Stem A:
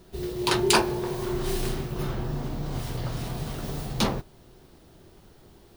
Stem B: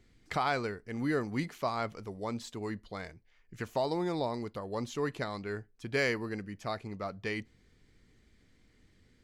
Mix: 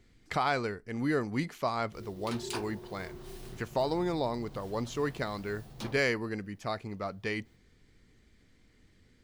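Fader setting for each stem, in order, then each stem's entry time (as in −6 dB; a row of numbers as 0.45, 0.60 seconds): −17.5, +1.5 decibels; 1.80, 0.00 seconds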